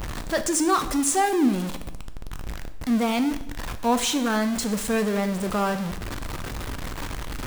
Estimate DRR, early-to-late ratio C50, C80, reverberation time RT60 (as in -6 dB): 9.0 dB, 12.5 dB, 15.0 dB, 0.85 s